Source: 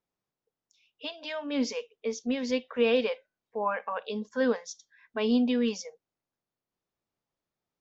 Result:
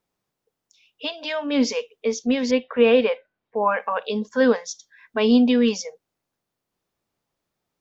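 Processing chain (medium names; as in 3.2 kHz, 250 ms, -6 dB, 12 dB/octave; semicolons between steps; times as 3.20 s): 2.51–3.69 s: low-pass 2.9 kHz 12 dB/octave; trim +8.5 dB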